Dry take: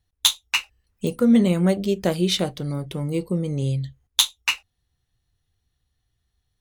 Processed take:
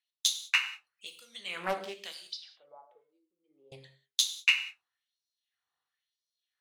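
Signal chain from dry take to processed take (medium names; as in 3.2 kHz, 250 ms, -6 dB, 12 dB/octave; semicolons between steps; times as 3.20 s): tilt EQ -3 dB/octave; de-hum 80.85 Hz, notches 5; LFO high-pass sine 1 Hz 950–5100 Hz; Chebyshev shaper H 2 -25 dB, 3 -25 dB, 4 -30 dB, 6 -39 dB, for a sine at -3.5 dBFS; 2.27–3.72 s: auto-wah 260–4900 Hz, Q 12, up, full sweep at -25.5 dBFS; gated-style reverb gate 220 ms falling, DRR 6 dB; loudspeaker Doppler distortion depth 0.33 ms; trim -2.5 dB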